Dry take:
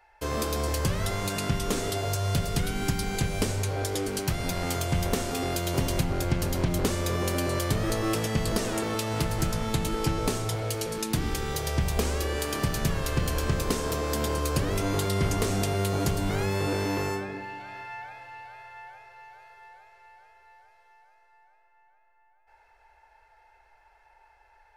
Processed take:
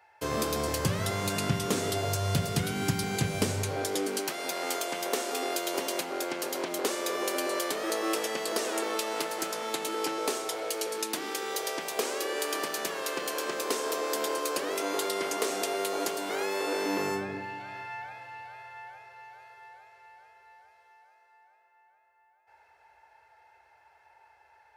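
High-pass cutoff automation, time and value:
high-pass 24 dB/octave
3.58 s 95 Hz
4.36 s 340 Hz
16.75 s 340 Hz
17.37 s 83 Hz

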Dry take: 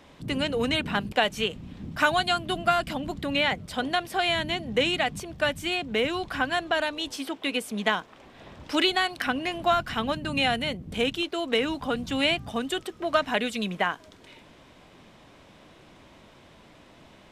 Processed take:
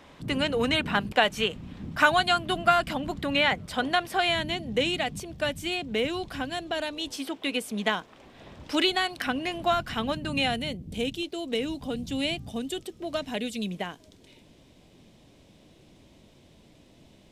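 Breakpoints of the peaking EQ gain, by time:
peaking EQ 1.3 kHz 1.8 oct
4.12 s +2.5 dB
4.65 s -6 dB
6.22 s -6 dB
6.51 s -12.5 dB
7.22 s -3 dB
10.38 s -3 dB
10.88 s -14.5 dB

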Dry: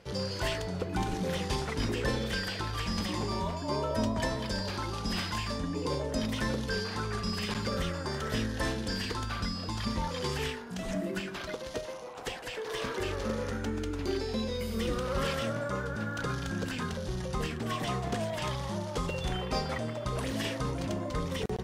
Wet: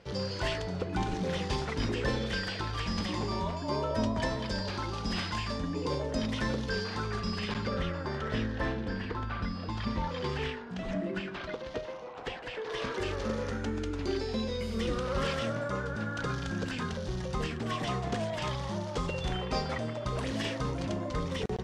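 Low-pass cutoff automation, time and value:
7.05 s 6.1 kHz
7.87 s 3.3 kHz
8.41 s 3.3 kHz
9.07 s 1.9 kHz
9.79 s 3.5 kHz
12.53 s 3.5 kHz
13.02 s 7 kHz

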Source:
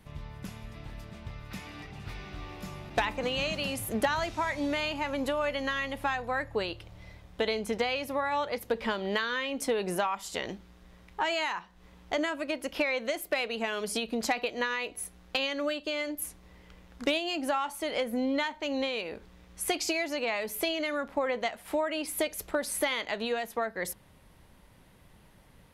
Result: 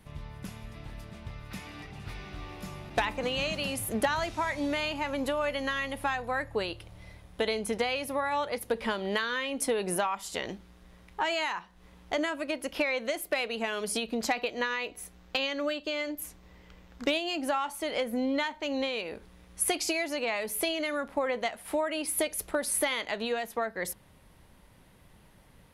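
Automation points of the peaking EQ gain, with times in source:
peaking EQ 10 kHz 0.24 oct
+5.5 dB
from 5.48 s +11.5 dB
from 9.98 s +5 dB
from 14.06 s -2.5 dB
from 14.70 s -9 dB
from 17.12 s +1.5 dB
from 19.07 s +9.5 dB
from 23.12 s +2 dB

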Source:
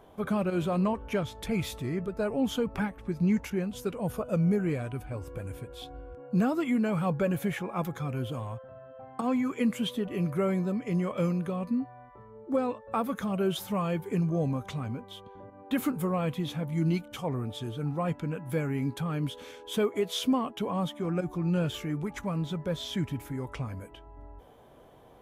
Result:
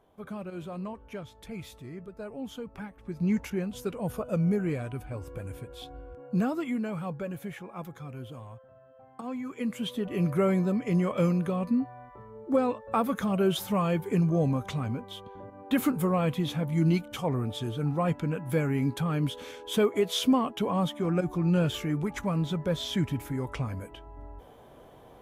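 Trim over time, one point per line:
2.83 s -10 dB
3.32 s -0.5 dB
6.31 s -0.5 dB
7.27 s -8 dB
9.38 s -8 dB
10.26 s +3 dB

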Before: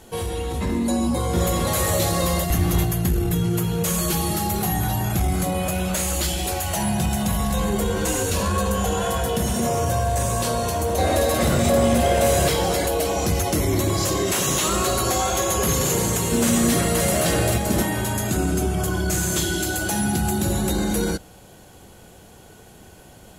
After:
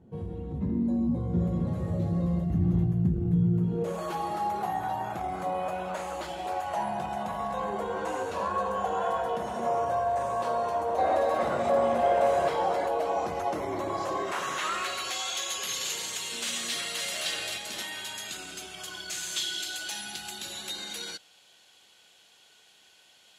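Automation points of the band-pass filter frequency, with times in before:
band-pass filter, Q 1.6
3.58 s 160 Hz
4.05 s 860 Hz
14.13 s 860 Hz
15.26 s 3.5 kHz

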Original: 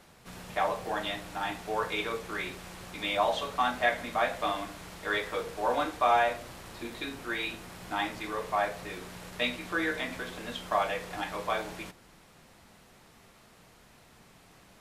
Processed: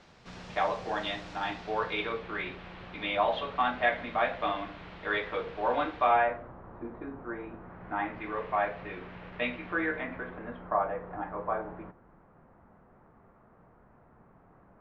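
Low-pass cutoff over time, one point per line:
low-pass 24 dB/octave
1.31 s 5.9 kHz
2.27 s 3.4 kHz
6.03 s 3.4 kHz
6.53 s 1.3 kHz
7.49 s 1.3 kHz
8.38 s 2.7 kHz
9.62 s 2.7 kHz
10.78 s 1.4 kHz

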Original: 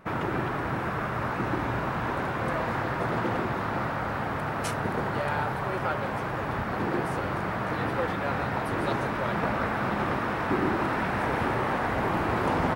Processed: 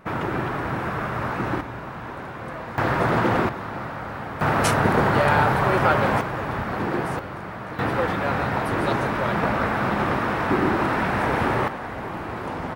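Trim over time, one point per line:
+3 dB
from 1.61 s -5 dB
from 2.78 s +7.5 dB
from 3.49 s -2 dB
from 4.41 s +10 dB
from 6.21 s +3 dB
from 7.19 s -4 dB
from 7.79 s +5 dB
from 11.68 s -4.5 dB

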